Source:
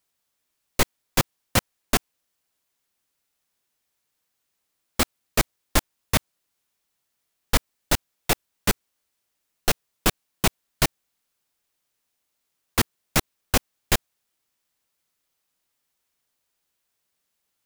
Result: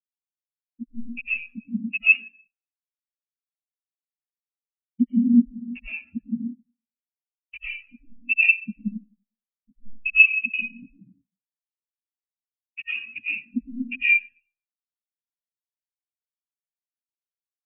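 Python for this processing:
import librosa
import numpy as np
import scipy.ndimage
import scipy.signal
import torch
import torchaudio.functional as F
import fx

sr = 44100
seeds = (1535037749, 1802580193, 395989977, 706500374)

p1 = fx.filter_lfo_lowpass(x, sr, shape='square', hz=1.1, low_hz=240.0, high_hz=2600.0, q=6.5)
p2 = scipy.signal.sosfilt(scipy.signal.butter(2, 5300.0, 'lowpass', fs=sr, output='sos'), p1)
p3 = fx.low_shelf(p2, sr, hz=130.0, db=3.5)
p4 = fx.hum_notches(p3, sr, base_hz=60, count=3)
p5 = fx.rev_freeverb(p4, sr, rt60_s=1.8, hf_ratio=0.75, predelay_ms=60, drr_db=-5.5)
p6 = fx.schmitt(p5, sr, flips_db=-20.5)
p7 = p5 + F.gain(torch.from_numpy(p6), -7.0).numpy()
p8 = fx.tilt_eq(p7, sr, slope=2.5)
p9 = fx.spectral_expand(p8, sr, expansion=4.0)
y = F.gain(torch.from_numpy(p9), -3.5).numpy()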